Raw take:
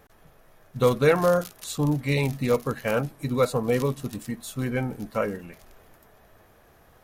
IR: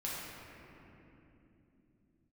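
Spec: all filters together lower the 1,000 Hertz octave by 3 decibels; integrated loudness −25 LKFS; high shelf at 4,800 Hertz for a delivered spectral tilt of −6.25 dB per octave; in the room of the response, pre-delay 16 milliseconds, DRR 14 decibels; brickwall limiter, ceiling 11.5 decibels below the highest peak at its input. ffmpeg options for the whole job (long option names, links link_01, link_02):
-filter_complex "[0:a]equalizer=frequency=1000:width_type=o:gain=-3.5,highshelf=frequency=4800:gain=-7.5,alimiter=limit=-20dB:level=0:latency=1,asplit=2[link_01][link_02];[1:a]atrim=start_sample=2205,adelay=16[link_03];[link_02][link_03]afir=irnorm=-1:irlink=0,volume=-17dB[link_04];[link_01][link_04]amix=inputs=2:normalize=0,volume=6dB"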